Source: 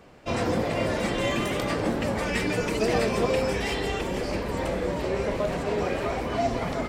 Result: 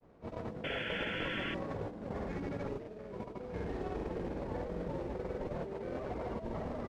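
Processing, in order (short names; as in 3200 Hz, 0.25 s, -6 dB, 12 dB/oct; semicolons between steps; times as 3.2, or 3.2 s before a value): median filter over 15 samples; bell 1800 Hz -2 dB; notches 50/100/150/200/250/300/350/400 Hz; negative-ratio compressor -29 dBFS, ratio -0.5; grains, pitch spread up and down by 0 st; painted sound noise, 0.63–1.53, 1400–3700 Hz -27 dBFS; modulation noise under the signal 19 dB; pitch shift -1 st; tape spacing loss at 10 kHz 22 dB; gain -8 dB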